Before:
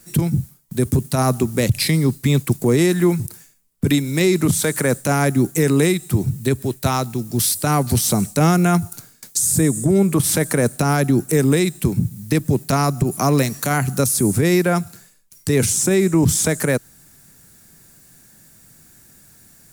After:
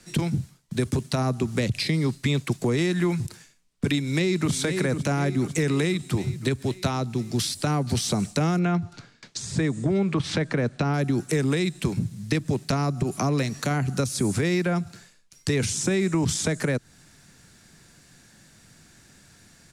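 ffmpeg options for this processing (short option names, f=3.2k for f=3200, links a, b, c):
-filter_complex "[0:a]asplit=2[a][b];[b]afade=t=in:st=3.99:d=0.01,afade=t=out:st=4.52:d=0.01,aecho=0:1:500|1000|1500|2000|2500|3000|3500:0.398107|0.218959|0.120427|0.0662351|0.0364293|0.0200361|0.0110199[c];[a][c]amix=inputs=2:normalize=0,asettb=1/sr,asplit=3[d][e][f];[d]atrim=end=8.594[g];[e]atrim=start=8.59:end=10.94,asetpts=PTS-STARTPTS,afade=t=in:d=0.004:c=qsin,afade=t=out:st=2.346:d=0.004:c=qsin,lowpass=3.9k[h];[f]atrim=start=10.936[i];[g][h]acrossfade=d=0.004:c1=hsin:c2=qsin[j];[j][i]acrossfade=d=0.004:c1=qsin:c2=hsin,lowpass=4.2k,acrossover=split=250|570[k][l][m];[k]acompressor=threshold=-24dB:ratio=4[n];[l]acompressor=threshold=-29dB:ratio=4[o];[m]acompressor=threshold=-32dB:ratio=4[p];[n][o][p]amix=inputs=3:normalize=0,highshelf=f=2.5k:g=8.5,volume=-1dB"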